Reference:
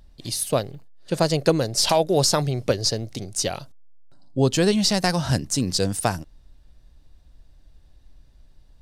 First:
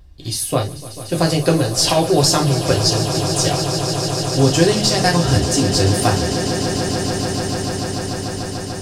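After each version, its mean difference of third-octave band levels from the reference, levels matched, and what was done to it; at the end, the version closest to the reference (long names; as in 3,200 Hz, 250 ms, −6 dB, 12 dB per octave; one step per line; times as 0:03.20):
9.0 dB: parametric band 76 Hz +13.5 dB 0.6 octaves
echo that builds up and dies away 147 ms, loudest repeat 8, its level −13.5 dB
reverb whose tail is shaped and stops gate 90 ms falling, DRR −1 dB
level +1 dB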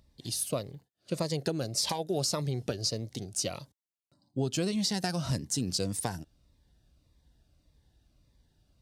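2.5 dB: downward compressor, threshold −20 dBFS, peak gain reduction 7.5 dB
high-pass filter 69 Hz
phaser whose notches keep moving one way falling 1.7 Hz
level −5.5 dB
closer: second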